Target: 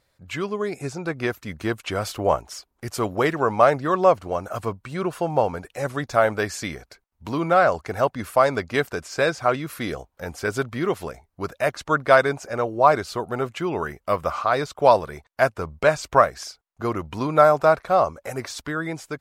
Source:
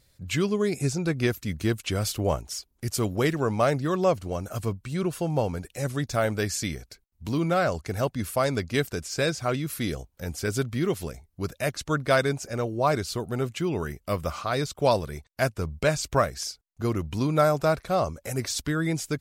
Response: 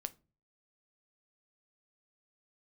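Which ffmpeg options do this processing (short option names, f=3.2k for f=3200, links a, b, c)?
-af "dynaudnorm=f=570:g=5:m=4.5dB,equalizer=f=970:w=0.44:g=15,volume=-9.5dB"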